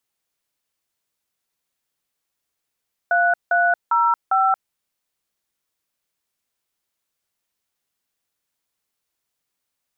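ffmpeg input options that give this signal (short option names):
-f lavfi -i "aevalsrc='0.141*clip(min(mod(t,0.401),0.228-mod(t,0.401))/0.002,0,1)*(eq(floor(t/0.401),0)*(sin(2*PI*697*mod(t,0.401))+sin(2*PI*1477*mod(t,0.401)))+eq(floor(t/0.401),1)*(sin(2*PI*697*mod(t,0.401))+sin(2*PI*1477*mod(t,0.401)))+eq(floor(t/0.401),2)*(sin(2*PI*941*mod(t,0.401))+sin(2*PI*1336*mod(t,0.401)))+eq(floor(t/0.401),3)*(sin(2*PI*770*mod(t,0.401))+sin(2*PI*1336*mod(t,0.401))))':d=1.604:s=44100"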